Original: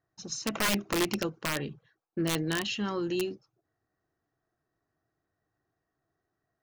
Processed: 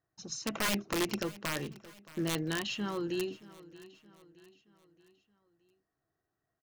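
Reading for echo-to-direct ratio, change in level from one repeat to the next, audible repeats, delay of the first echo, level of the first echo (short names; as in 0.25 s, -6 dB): -18.0 dB, -6.5 dB, 3, 0.623 s, -19.0 dB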